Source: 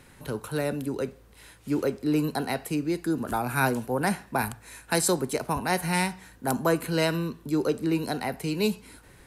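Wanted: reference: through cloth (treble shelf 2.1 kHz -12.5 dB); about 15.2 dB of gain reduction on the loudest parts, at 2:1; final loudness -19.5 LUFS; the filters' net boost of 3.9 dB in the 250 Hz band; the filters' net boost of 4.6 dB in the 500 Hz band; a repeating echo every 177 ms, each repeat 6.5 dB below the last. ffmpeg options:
-af "equalizer=f=250:t=o:g=3.5,equalizer=f=500:t=o:g=5.5,acompressor=threshold=0.00631:ratio=2,highshelf=f=2100:g=-12.5,aecho=1:1:177|354|531|708|885|1062:0.473|0.222|0.105|0.0491|0.0231|0.0109,volume=8.41"

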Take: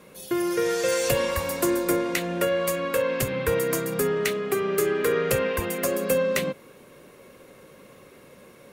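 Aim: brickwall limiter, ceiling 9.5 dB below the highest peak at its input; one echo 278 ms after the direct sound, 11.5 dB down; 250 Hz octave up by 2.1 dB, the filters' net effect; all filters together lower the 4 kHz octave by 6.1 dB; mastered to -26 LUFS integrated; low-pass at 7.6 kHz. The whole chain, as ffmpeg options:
-af "lowpass=7600,equalizer=f=250:t=o:g=3.5,equalizer=f=4000:t=o:g=-8.5,alimiter=limit=0.106:level=0:latency=1,aecho=1:1:278:0.266,volume=1.19"

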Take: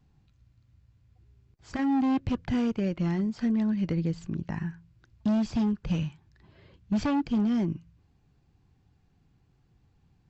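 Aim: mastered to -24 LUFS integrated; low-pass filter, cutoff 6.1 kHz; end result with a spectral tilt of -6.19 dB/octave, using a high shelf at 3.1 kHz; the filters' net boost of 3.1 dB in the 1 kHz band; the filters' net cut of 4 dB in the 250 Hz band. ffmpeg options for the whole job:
-af "lowpass=6100,equalizer=f=250:t=o:g=-5,equalizer=f=1000:t=o:g=5,highshelf=f=3100:g=-7,volume=2.51"

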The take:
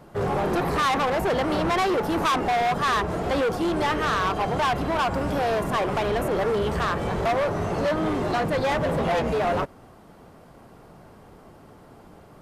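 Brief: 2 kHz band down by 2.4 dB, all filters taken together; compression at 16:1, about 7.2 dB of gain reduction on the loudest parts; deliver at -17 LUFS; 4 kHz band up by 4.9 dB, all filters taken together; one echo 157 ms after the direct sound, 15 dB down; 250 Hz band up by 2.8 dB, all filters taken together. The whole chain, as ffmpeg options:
-af "equalizer=f=250:t=o:g=4,equalizer=f=2000:t=o:g=-5,equalizer=f=4000:t=o:g=8,acompressor=threshold=0.0447:ratio=16,aecho=1:1:157:0.178,volume=4.47"

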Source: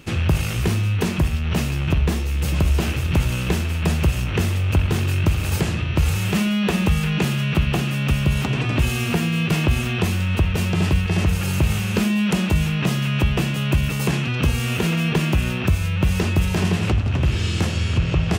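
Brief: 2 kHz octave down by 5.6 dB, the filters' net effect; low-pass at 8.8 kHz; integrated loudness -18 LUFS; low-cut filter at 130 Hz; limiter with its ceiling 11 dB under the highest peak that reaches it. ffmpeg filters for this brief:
-af "highpass=130,lowpass=8800,equalizer=f=2000:t=o:g=-8,volume=2.99,alimiter=limit=0.355:level=0:latency=1"

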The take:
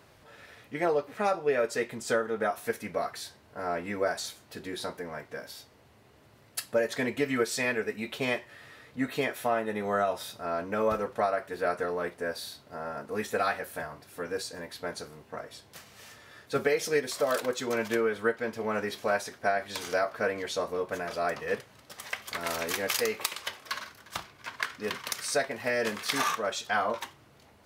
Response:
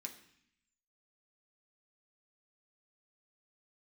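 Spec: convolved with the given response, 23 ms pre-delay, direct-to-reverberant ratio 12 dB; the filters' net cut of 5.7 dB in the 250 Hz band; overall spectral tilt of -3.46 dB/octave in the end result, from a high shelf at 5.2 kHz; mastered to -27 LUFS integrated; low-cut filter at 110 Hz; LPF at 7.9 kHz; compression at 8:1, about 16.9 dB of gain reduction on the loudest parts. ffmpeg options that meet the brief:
-filter_complex "[0:a]highpass=110,lowpass=7900,equalizer=f=250:t=o:g=-7,highshelf=f=5200:g=8.5,acompressor=threshold=0.00891:ratio=8,asplit=2[s0][s1];[1:a]atrim=start_sample=2205,adelay=23[s2];[s1][s2]afir=irnorm=-1:irlink=0,volume=0.398[s3];[s0][s3]amix=inputs=2:normalize=0,volume=7.5"

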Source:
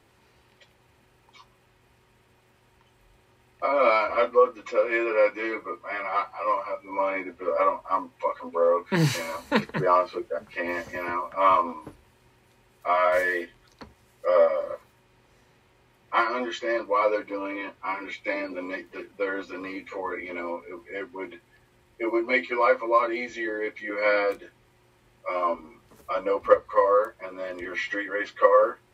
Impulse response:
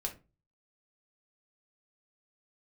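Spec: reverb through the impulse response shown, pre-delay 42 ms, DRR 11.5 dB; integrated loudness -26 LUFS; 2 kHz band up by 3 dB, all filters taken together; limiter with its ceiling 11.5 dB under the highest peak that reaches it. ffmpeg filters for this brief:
-filter_complex "[0:a]equalizer=f=2000:t=o:g=3.5,alimiter=limit=0.178:level=0:latency=1,asplit=2[s0][s1];[1:a]atrim=start_sample=2205,adelay=42[s2];[s1][s2]afir=irnorm=-1:irlink=0,volume=0.237[s3];[s0][s3]amix=inputs=2:normalize=0,volume=1.12"

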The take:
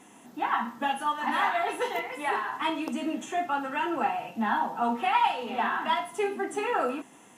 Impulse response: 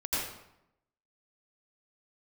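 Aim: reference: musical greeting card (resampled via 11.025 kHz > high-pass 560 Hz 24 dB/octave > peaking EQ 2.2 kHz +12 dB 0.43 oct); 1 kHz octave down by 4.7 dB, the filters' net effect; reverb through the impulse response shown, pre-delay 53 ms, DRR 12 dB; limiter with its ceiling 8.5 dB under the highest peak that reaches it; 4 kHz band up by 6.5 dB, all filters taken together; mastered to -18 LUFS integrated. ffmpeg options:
-filter_complex "[0:a]equalizer=f=1000:t=o:g=-6.5,equalizer=f=4000:t=o:g=7,alimiter=limit=0.0668:level=0:latency=1,asplit=2[s0][s1];[1:a]atrim=start_sample=2205,adelay=53[s2];[s1][s2]afir=irnorm=-1:irlink=0,volume=0.112[s3];[s0][s3]amix=inputs=2:normalize=0,aresample=11025,aresample=44100,highpass=f=560:w=0.5412,highpass=f=560:w=1.3066,equalizer=f=2200:t=o:w=0.43:g=12,volume=4.22"

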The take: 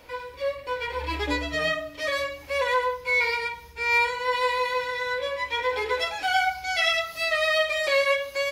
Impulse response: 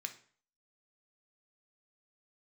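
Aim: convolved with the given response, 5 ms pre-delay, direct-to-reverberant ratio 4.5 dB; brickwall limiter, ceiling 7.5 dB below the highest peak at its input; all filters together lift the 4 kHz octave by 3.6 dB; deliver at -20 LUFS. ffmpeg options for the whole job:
-filter_complex "[0:a]equalizer=f=4000:t=o:g=4.5,alimiter=limit=0.15:level=0:latency=1,asplit=2[s0][s1];[1:a]atrim=start_sample=2205,adelay=5[s2];[s1][s2]afir=irnorm=-1:irlink=0,volume=0.708[s3];[s0][s3]amix=inputs=2:normalize=0,volume=1.58"

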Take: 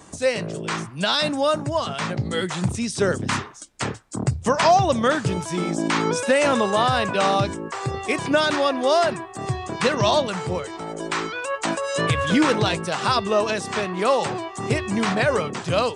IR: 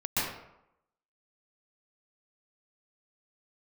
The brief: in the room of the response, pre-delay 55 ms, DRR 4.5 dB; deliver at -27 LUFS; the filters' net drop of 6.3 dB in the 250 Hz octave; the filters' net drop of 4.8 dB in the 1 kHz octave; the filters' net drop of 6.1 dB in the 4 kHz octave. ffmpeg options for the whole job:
-filter_complex "[0:a]equalizer=f=250:t=o:g=-8.5,equalizer=f=1000:t=o:g=-5.5,equalizer=f=4000:t=o:g=-7.5,asplit=2[s0][s1];[1:a]atrim=start_sample=2205,adelay=55[s2];[s1][s2]afir=irnorm=-1:irlink=0,volume=0.2[s3];[s0][s3]amix=inputs=2:normalize=0,volume=0.794"

